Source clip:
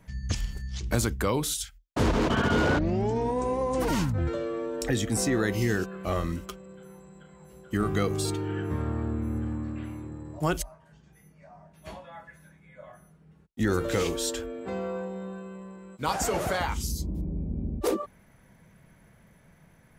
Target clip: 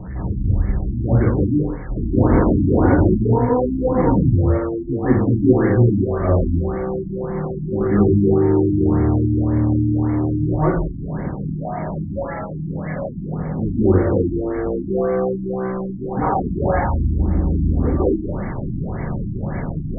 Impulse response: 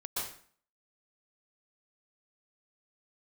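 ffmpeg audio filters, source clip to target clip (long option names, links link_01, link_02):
-filter_complex "[0:a]aeval=exprs='val(0)+0.5*0.0501*sgn(val(0))':channel_layout=same,acrossover=split=410[link_01][link_02];[link_01]acontrast=72[link_03];[link_03][link_02]amix=inputs=2:normalize=0,asettb=1/sr,asplit=3[link_04][link_05][link_06];[link_04]atrim=end=4.404[link_07];[link_05]atrim=start=4.4:end=5.45,asetpts=PTS-STARTPTS,afade=type=in:duration=0.004:curve=qsin,afade=type=out:start_time=1.046:duration=0.004:curve=qsin,aeval=exprs='0.376*(cos(1*acos(clip(val(0)/0.376,-1,1)))-cos(1*PI/2))+0.0376*(cos(7*acos(clip(val(0)/0.376,-1,1)))-cos(7*PI/2))':channel_layout=same[link_08];[link_06]atrim=start=5.446[link_09];[link_07][link_08]acrossfade=duration=0.004:curve1=hsin:curve2=qsin[link_10];[link_10][link_09]acrossfade=duration=0.004:curve1=qsin:curve2=hsin[link_11];[1:a]atrim=start_sample=2205,asetrate=33075,aresample=44100[link_12];[link_11][link_12]afir=irnorm=-1:irlink=0,afftfilt=real='re*lt(b*sr/1024,330*pow(2300/330,0.5+0.5*sin(2*PI*1.8*pts/sr)))':imag='im*lt(b*sr/1024,330*pow(2300/330,0.5+0.5*sin(2*PI*1.8*pts/sr)))':win_size=1024:overlap=0.75,volume=-2dB"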